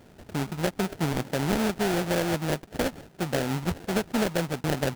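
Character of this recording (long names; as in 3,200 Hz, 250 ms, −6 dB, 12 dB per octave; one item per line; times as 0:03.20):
aliases and images of a low sample rate 1,100 Hz, jitter 20%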